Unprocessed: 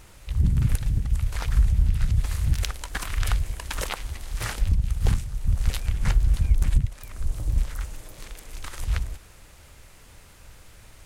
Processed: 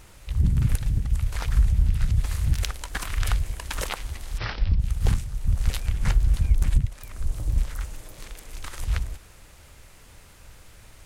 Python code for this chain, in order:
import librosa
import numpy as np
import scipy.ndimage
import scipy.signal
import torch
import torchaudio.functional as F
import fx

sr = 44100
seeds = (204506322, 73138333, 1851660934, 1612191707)

y = fx.steep_lowpass(x, sr, hz=5500.0, slope=96, at=(4.37, 4.78), fade=0.02)